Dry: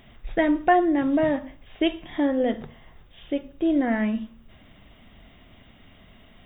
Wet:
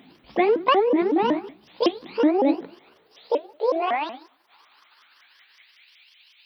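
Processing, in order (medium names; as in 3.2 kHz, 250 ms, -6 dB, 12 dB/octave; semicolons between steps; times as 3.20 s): sawtooth pitch modulation +9 st, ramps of 186 ms; high-pass sweep 230 Hz -> 2.6 kHz, 2.10–6.10 s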